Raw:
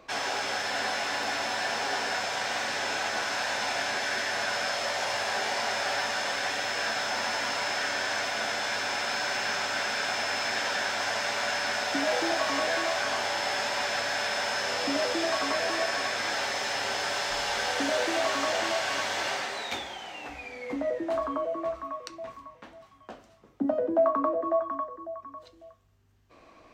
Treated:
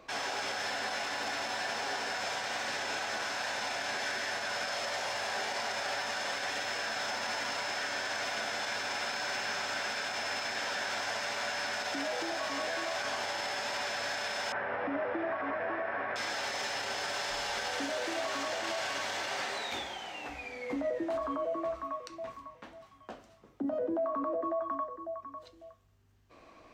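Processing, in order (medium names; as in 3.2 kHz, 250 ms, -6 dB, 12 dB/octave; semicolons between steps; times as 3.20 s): 14.52–16.16 s: low-pass 1.9 kHz 24 dB/octave; peak limiter -24.5 dBFS, peak gain reduction 9.5 dB; trim -1.5 dB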